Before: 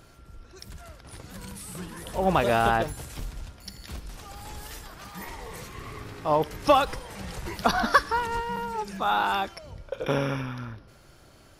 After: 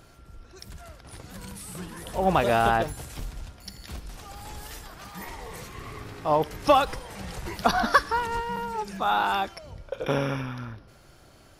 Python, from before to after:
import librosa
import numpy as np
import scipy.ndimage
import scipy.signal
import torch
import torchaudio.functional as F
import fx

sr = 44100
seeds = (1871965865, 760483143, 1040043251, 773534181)

y = fx.peak_eq(x, sr, hz=730.0, db=2.5, octaves=0.22)